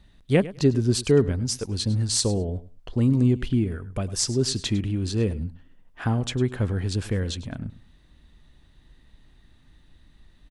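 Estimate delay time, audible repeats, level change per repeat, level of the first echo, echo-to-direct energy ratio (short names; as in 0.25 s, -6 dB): 0.103 s, 2, -16.0 dB, -17.0 dB, -17.0 dB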